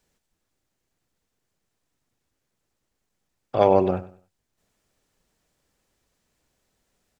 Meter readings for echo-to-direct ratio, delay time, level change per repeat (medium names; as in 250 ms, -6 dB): -16.0 dB, 97 ms, -11.0 dB